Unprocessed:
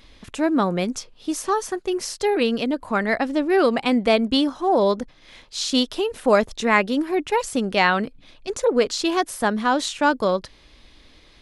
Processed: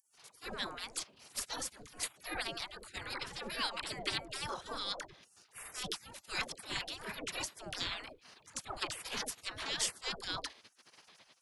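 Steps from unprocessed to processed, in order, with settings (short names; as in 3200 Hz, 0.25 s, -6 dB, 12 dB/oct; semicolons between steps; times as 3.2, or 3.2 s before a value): level quantiser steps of 10 dB; dispersion lows, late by 0.144 s, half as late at 400 Hz; spectral gate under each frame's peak -25 dB weak; gain +3.5 dB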